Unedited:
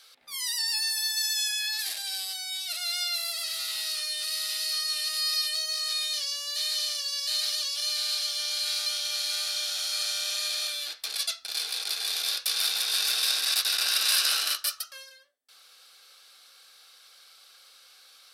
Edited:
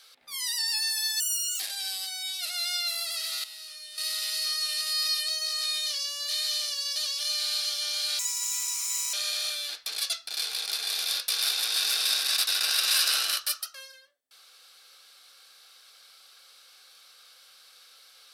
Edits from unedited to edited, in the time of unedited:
1.2–1.87 speed 168%
3.71–4.25 gain -11.5 dB
7.23–7.53 cut
8.76–10.31 speed 164%

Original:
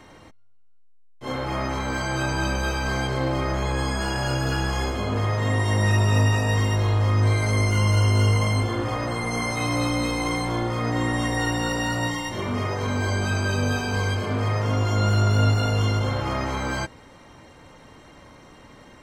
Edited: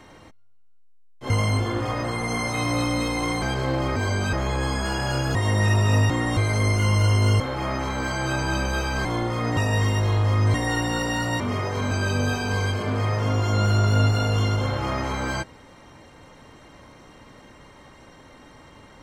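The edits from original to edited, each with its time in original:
1.3–2.95 swap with 8.33–10.45
4.51–5.58 cut
6.33–7.3 swap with 10.97–11.24
12.1–12.46 cut
12.97–13.34 move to 3.49

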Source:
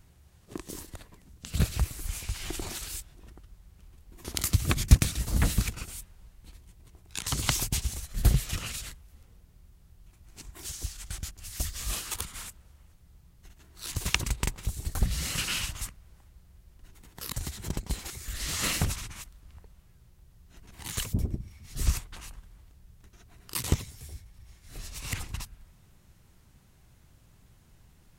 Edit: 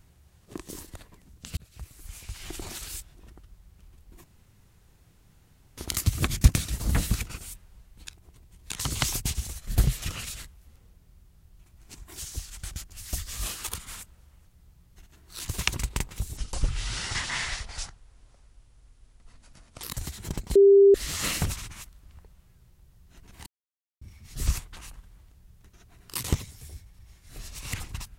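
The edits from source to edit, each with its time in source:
1.57–2.9 fade in
4.24 insert room tone 1.53 s
6.54–7.17 reverse
14.84–17.23 speed 69%
17.95–18.34 bleep 397 Hz -11.5 dBFS
20.86–21.41 mute

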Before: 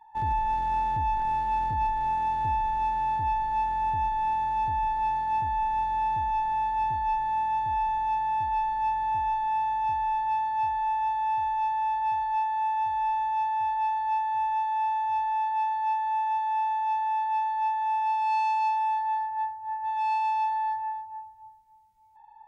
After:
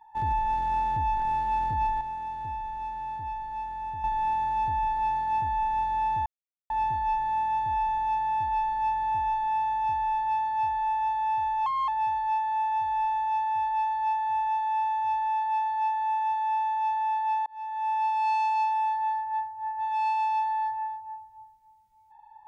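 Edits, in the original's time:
2.01–4.04 gain -7.5 dB
6.26–6.7 mute
11.66–11.93 speed 122%
17.51–17.99 fade in

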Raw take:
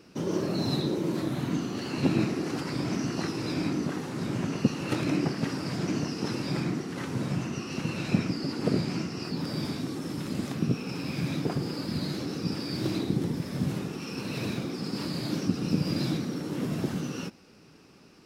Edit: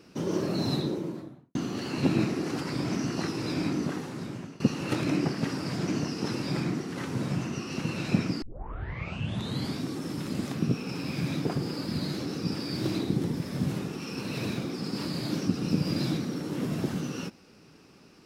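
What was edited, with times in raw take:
0.66–1.55 studio fade out
3.9–4.6 fade out linear, to -19 dB
8.42 tape start 1.34 s

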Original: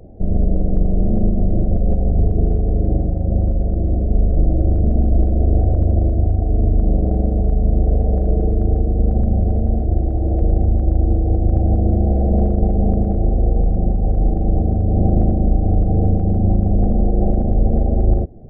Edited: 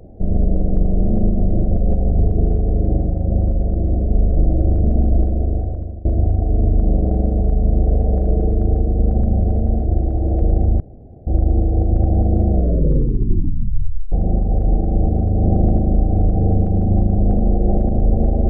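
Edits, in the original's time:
5.11–6.05 fade out, to -22 dB
10.8 insert room tone 0.47 s
12.01 tape stop 1.64 s

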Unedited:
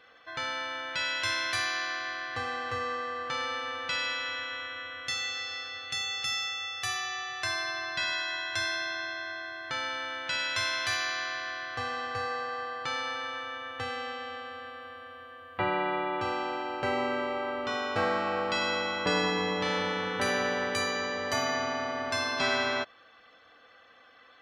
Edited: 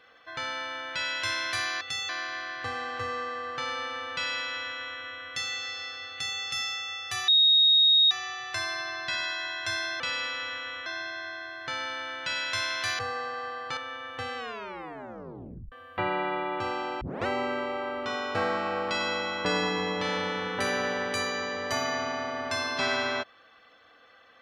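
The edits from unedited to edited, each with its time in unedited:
3.86–4.72 copy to 8.89
5.83–6.11 copy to 1.81
7 add tone 3750 Hz -16.5 dBFS 0.83 s
11.02–12.14 cut
12.92–13.38 cut
13.98 tape stop 1.35 s
16.62 tape start 0.25 s

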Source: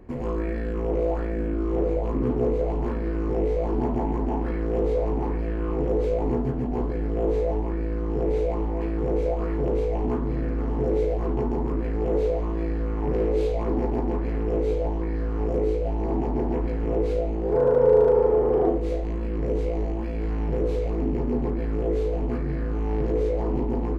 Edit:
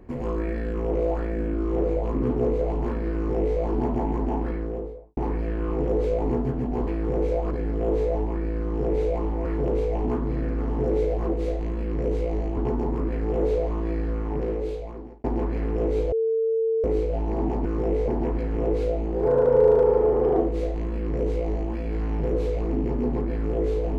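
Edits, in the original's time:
3.16–3.59 copy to 16.37
4.33–5.17 studio fade out
8.81–9.45 move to 6.87
12.82–13.96 fade out
14.84–15.56 bleep 449 Hz -20 dBFS
18.73–20.01 copy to 11.29

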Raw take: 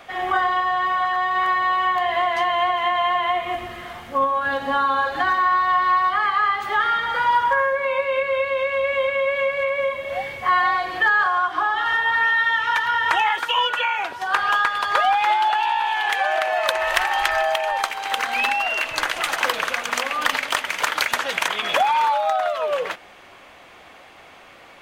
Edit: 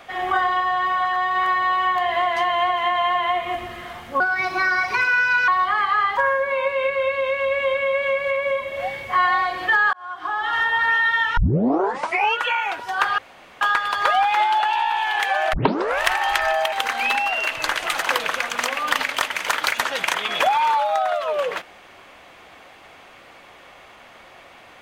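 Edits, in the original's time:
4.2–5.93 speed 135%
6.62–7.5 cut
11.26–11.88 fade in
12.7 tape start 1.03 s
14.51 insert room tone 0.43 s
16.43 tape start 0.49 s
17.62–18.06 cut

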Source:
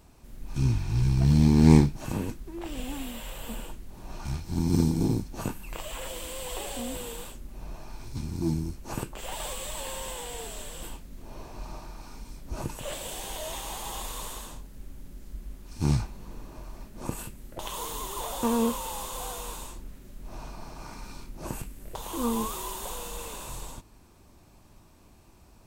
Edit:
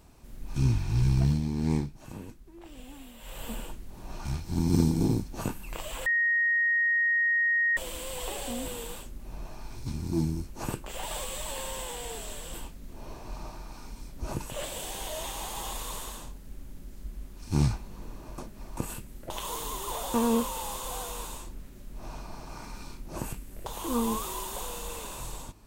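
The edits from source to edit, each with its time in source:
1.18–3.41 dip -11 dB, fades 0.23 s
6.06 add tone 1870 Hz -22 dBFS 1.71 s
16.67–17.06 reverse

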